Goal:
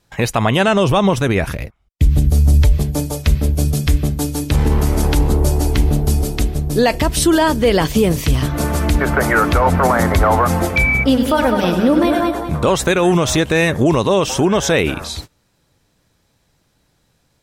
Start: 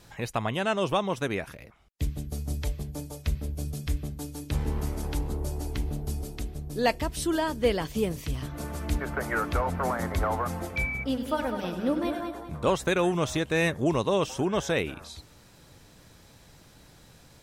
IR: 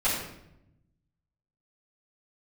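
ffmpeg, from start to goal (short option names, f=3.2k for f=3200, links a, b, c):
-filter_complex "[0:a]agate=range=-25dB:threshold=-46dB:ratio=16:detection=peak,asettb=1/sr,asplit=3[a][b][c];[a]atrim=end=0.684[d];[b]atrim=start=0.68:end=2.78,asetpts=PTS-STARTPTS,afade=t=in:d=0.004:c=qsin,afade=t=out:st=2.096:d=0.004:c=qsin,lowshelf=f=120:g=12[e];[c]atrim=start=2.776[f];[d][e]acrossfade=d=0.004:c1=hsin:c2=qsin[g];[g][f]acrossfade=d=0.004:c1=qsin:c2=hsin,alimiter=level_in=21dB:limit=-1dB:release=50:level=0:latency=1,volume=-4dB"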